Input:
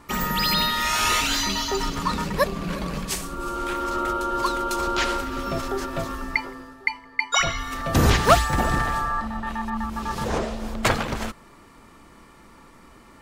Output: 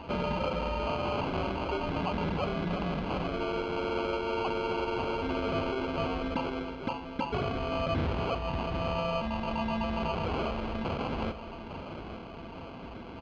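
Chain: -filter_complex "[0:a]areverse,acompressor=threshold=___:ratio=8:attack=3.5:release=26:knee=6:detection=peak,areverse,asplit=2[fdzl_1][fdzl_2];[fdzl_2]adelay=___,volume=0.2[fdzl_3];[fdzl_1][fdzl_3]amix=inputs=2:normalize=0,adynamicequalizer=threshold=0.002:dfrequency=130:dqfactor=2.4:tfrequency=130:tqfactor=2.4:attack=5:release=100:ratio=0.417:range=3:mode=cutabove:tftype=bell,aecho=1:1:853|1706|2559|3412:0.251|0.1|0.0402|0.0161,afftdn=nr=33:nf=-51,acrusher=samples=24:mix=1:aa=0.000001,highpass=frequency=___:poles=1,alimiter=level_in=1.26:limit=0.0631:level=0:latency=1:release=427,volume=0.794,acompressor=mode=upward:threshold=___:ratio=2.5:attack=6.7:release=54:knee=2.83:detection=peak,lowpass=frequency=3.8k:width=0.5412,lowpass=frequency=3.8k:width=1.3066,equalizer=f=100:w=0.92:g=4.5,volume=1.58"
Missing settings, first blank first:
0.0251, 12, 66, 0.00631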